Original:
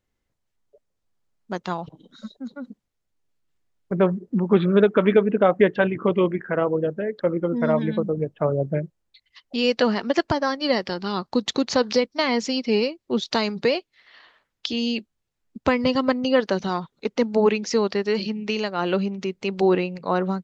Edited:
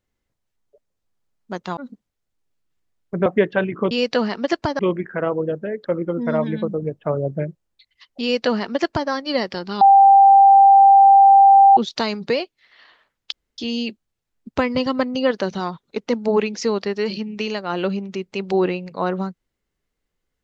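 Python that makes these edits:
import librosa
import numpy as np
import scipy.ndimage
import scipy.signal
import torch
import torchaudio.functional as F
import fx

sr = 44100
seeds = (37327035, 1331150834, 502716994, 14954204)

y = fx.edit(x, sr, fx.cut(start_s=1.77, length_s=0.78),
    fx.cut(start_s=4.04, length_s=1.45),
    fx.duplicate(start_s=9.57, length_s=0.88, to_s=6.14),
    fx.bleep(start_s=11.16, length_s=1.96, hz=788.0, db=-6.5),
    fx.insert_room_tone(at_s=14.67, length_s=0.26), tone=tone)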